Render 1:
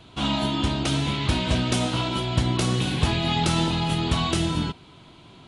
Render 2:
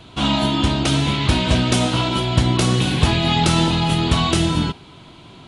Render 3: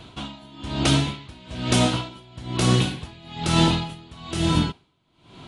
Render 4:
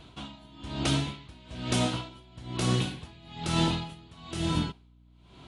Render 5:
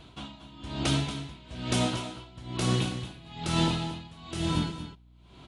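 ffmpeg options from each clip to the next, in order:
-af "bandreject=f=411.4:t=h:w=4,bandreject=f=822.8:t=h:w=4,bandreject=f=1.2342k:t=h:w=4,bandreject=f=1.6456k:t=h:w=4,bandreject=f=2.057k:t=h:w=4,bandreject=f=2.4684k:t=h:w=4,bandreject=f=2.8798k:t=h:w=4,bandreject=f=3.2912k:t=h:w=4,bandreject=f=3.7026k:t=h:w=4,bandreject=f=4.114k:t=h:w=4,bandreject=f=4.5254k:t=h:w=4,bandreject=f=4.9368k:t=h:w=4,bandreject=f=5.3482k:t=h:w=4,bandreject=f=5.7596k:t=h:w=4,bandreject=f=6.171k:t=h:w=4,bandreject=f=6.5824k:t=h:w=4,bandreject=f=6.9938k:t=h:w=4,bandreject=f=7.4052k:t=h:w=4,bandreject=f=7.8166k:t=h:w=4,bandreject=f=8.228k:t=h:w=4,bandreject=f=8.6394k:t=h:w=4,bandreject=f=9.0508k:t=h:w=4,bandreject=f=9.4622k:t=h:w=4,bandreject=f=9.8736k:t=h:w=4,bandreject=f=10.285k:t=h:w=4,bandreject=f=10.6964k:t=h:w=4,bandreject=f=11.1078k:t=h:w=4,bandreject=f=11.5192k:t=h:w=4,bandreject=f=11.9306k:t=h:w=4,bandreject=f=12.342k:t=h:w=4,bandreject=f=12.7534k:t=h:w=4,bandreject=f=13.1648k:t=h:w=4,bandreject=f=13.5762k:t=h:w=4,bandreject=f=13.9876k:t=h:w=4,volume=6dB"
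-af "aeval=exprs='val(0)*pow(10,-27*(0.5-0.5*cos(2*PI*1.1*n/s))/20)':c=same"
-af "aeval=exprs='val(0)+0.00355*(sin(2*PI*60*n/s)+sin(2*PI*2*60*n/s)/2+sin(2*PI*3*60*n/s)/3+sin(2*PI*4*60*n/s)/4+sin(2*PI*5*60*n/s)/5)':c=same,volume=-7.5dB"
-af "aecho=1:1:232:0.266"

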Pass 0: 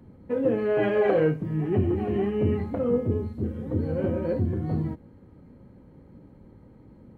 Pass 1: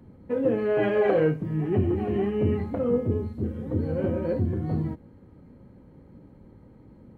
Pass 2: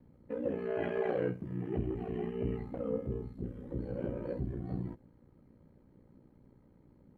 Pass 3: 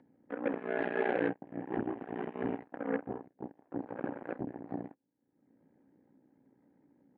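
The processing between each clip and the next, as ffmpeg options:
-af anull
-af "aeval=exprs='val(0)*sin(2*PI*30*n/s)':c=same,volume=-8dB"
-af "aeval=exprs='0.0891*(cos(1*acos(clip(val(0)/0.0891,-1,1)))-cos(1*PI/2))+0.000708*(cos(5*acos(clip(val(0)/0.0891,-1,1)))-cos(5*PI/2))+0.00178*(cos(6*acos(clip(val(0)/0.0891,-1,1)))-cos(6*PI/2))+0.0141*(cos(7*acos(clip(val(0)/0.0891,-1,1)))-cos(7*PI/2))':c=same,highpass=200,equalizer=f=280:t=q:w=4:g=8,equalizer=f=790:t=q:w=4:g=6,equalizer=f=1.2k:t=q:w=4:g=-6,equalizer=f=1.7k:t=q:w=4:g=8,lowpass=f=2.9k:w=0.5412,lowpass=f=2.9k:w=1.3066,acompressor=mode=upward:threshold=-50dB:ratio=2.5"

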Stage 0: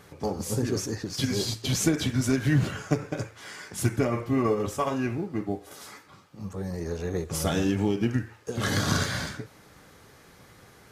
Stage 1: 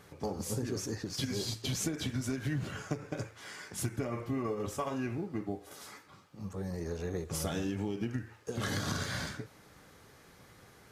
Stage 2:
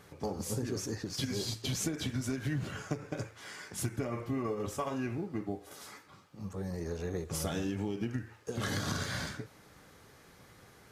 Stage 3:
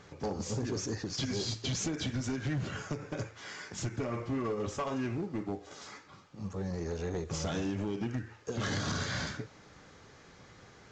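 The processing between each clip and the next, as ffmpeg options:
-af "acompressor=threshold=-26dB:ratio=6,volume=-4.5dB"
-af anull
-af "asoftclip=type=hard:threshold=-30.5dB,volume=2dB" -ar 16000 -c:a pcm_mulaw

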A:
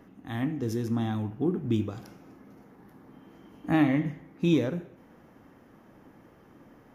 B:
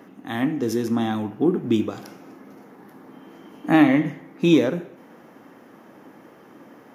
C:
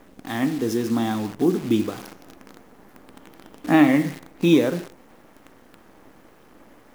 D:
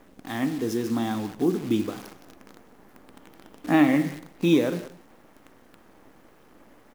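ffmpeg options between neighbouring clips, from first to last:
-af "highpass=220,volume=9dB"
-af "acrusher=bits=7:dc=4:mix=0:aa=0.000001"
-af "aecho=1:1:181:0.126,volume=-3.5dB"

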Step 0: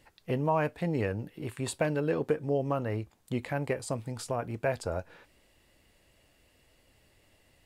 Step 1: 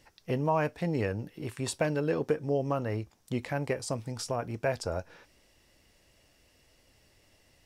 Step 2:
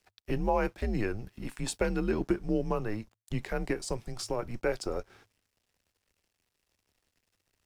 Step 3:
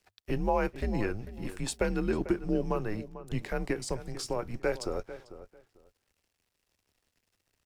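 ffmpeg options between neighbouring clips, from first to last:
-af "equalizer=f=5.6k:w=3.6:g=10"
-af "aeval=exprs='sgn(val(0))*max(abs(val(0))-0.001,0)':c=same,afreqshift=-110"
-filter_complex "[0:a]asplit=2[a][b];[b]adelay=445,lowpass=f=2.1k:p=1,volume=-13.5dB,asplit=2[c][d];[d]adelay=445,lowpass=f=2.1k:p=1,volume=0.2[e];[a][c][e]amix=inputs=3:normalize=0"

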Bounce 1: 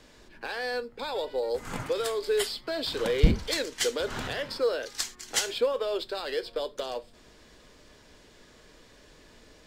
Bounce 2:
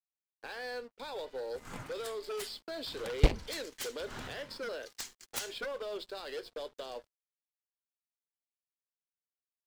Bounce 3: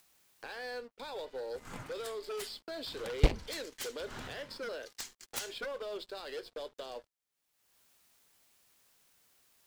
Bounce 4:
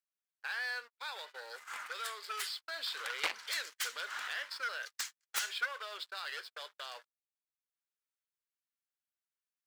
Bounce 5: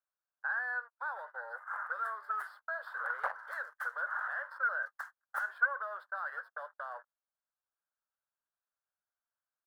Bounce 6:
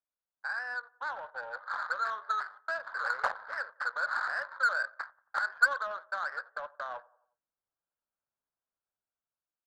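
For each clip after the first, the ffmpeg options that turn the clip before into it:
-af "agate=range=-10dB:threshold=-42dB:ratio=16:detection=peak,aeval=exprs='0.473*(cos(1*acos(clip(val(0)/0.473,-1,1)))-cos(1*PI/2))+0.119*(cos(7*acos(clip(val(0)/0.473,-1,1)))-cos(7*PI/2))':c=same,aeval=exprs='sgn(val(0))*max(abs(val(0))-0.00251,0)':c=same,volume=-4dB"
-af "acompressor=mode=upward:threshold=-43dB:ratio=2.5,volume=-1dB"
-filter_complex "[0:a]agate=range=-35dB:threshold=-47dB:ratio=16:detection=peak,highpass=f=1.4k:t=q:w=1.8,asplit=2[a][b];[b]aeval=exprs='0.0398*(abs(mod(val(0)/0.0398+3,4)-2)-1)':c=same,volume=-6dB[c];[a][c]amix=inputs=2:normalize=0"
-af "firequalizer=gain_entry='entry(110,0);entry(280,-21);entry(560,8);entry(1600,10);entry(2300,-24);entry(7200,-25);entry(10000,-15)':delay=0.05:min_phase=1,volume=-3dB"
-filter_complex "[0:a]dynaudnorm=f=230:g=9:m=5dB,asplit=2[a][b];[b]adelay=90,lowpass=f=3.9k:p=1,volume=-19.5dB,asplit=2[c][d];[d]adelay=90,lowpass=f=3.9k:p=1,volume=0.49,asplit=2[e][f];[f]adelay=90,lowpass=f=3.9k:p=1,volume=0.49,asplit=2[g][h];[h]adelay=90,lowpass=f=3.9k:p=1,volume=0.49[i];[a][c][e][g][i]amix=inputs=5:normalize=0,adynamicsmooth=sensitivity=3.5:basefreq=1.2k"

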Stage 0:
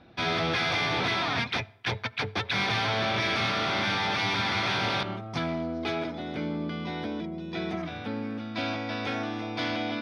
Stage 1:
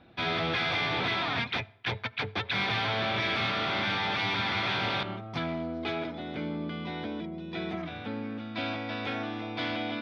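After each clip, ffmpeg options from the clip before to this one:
-af "highshelf=f=4.5k:t=q:w=1.5:g=-6,volume=-2.5dB"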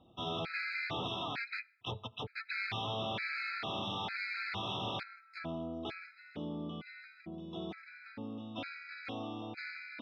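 -af "afftfilt=real='re*gt(sin(2*PI*1.1*pts/sr)*(1-2*mod(floor(b*sr/1024/1300),2)),0)':imag='im*gt(sin(2*PI*1.1*pts/sr)*(1-2*mod(floor(b*sr/1024/1300),2)),0)':win_size=1024:overlap=0.75,volume=-6dB"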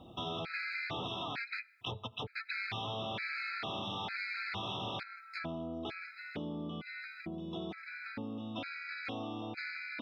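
-af "acompressor=threshold=-52dB:ratio=2.5,volume=10dB"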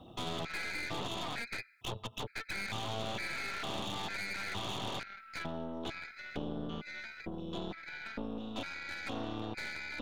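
-filter_complex "[0:a]aeval=exprs='0.0501*(cos(1*acos(clip(val(0)/0.0501,-1,1)))-cos(1*PI/2))+0.0141*(cos(4*acos(clip(val(0)/0.0501,-1,1)))-cos(4*PI/2))':c=same,acrossover=split=440[a][b];[b]asoftclip=type=hard:threshold=-34.5dB[c];[a][c]amix=inputs=2:normalize=0"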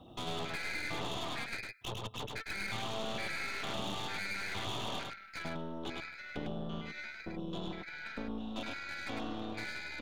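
-af "aecho=1:1:104:0.668,volume=-1.5dB"

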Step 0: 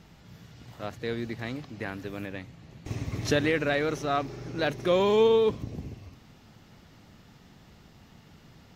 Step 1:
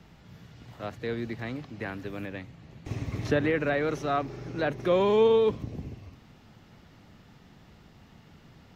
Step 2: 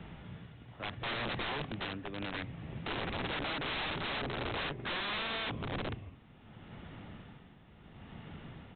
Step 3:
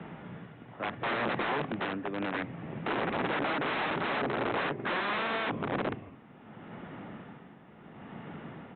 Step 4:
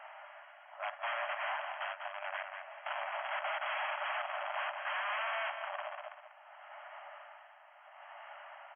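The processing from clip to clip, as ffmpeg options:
-filter_complex "[0:a]bass=f=250:g=0,treble=f=4k:g=-5,acrossover=split=220|530|2300[a][b][c][d];[d]alimiter=level_in=11dB:limit=-24dB:level=0:latency=1:release=193,volume=-11dB[e];[a][b][c][e]amix=inputs=4:normalize=0"
-af "tremolo=f=0.72:d=0.71,acompressor=threshold=-32dB:ratio=6,aresample=8000,aeval=exprs='(mod(75*val(0)+1,2)-1)/75':c=same,aresample=44100,volume=6dB"
-filter_complex "[0:a]acrossover=split=150 2300:gain=0.0891 1 0.141[a][b][c];[a][b][c]amix=inputs=3:normalize=0,volume=8dB"
-af "aecho=1:1:193|386|579:0.355|0.0923|0.024,asoftclip=type=tanh:threshold=-31.5dB,afftfilt=real='re*between(b*sr/4096,570,3300)':imag='im*between(b*sr/4096,570,3300)':win_size=4096:overlap=0.75"

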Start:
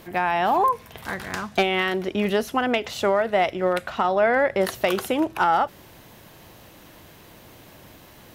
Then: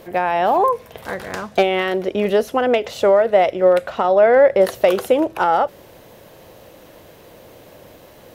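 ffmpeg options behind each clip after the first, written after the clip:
-af "equalizer=f=520:w=1.8:g=11.5"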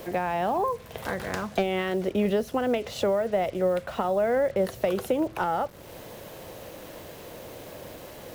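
-filter_complex "[0:a]acrossover=split=210[a][b];[b]acompressor=threshold=-32dB:ratio=2.5[c];[a][c]amix=inputs=2:normalize=0,acrusher=bits=7:mix=0:aa=0.5,volume=1.5dB"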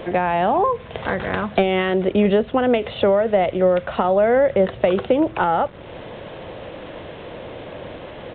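-af "aresample=8000,aresample=44100,volume=8dB"

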